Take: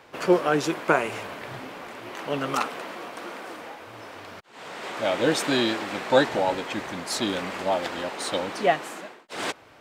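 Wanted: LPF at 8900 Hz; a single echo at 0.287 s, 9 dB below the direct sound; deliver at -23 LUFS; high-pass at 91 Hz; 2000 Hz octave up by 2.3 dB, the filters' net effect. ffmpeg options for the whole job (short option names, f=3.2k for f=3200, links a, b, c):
-af "highpass=91,lowpass=8.9k,equalizer=f=2k:t=o:g=3,aecho=1:1:287:0.355,volume=2.5dB"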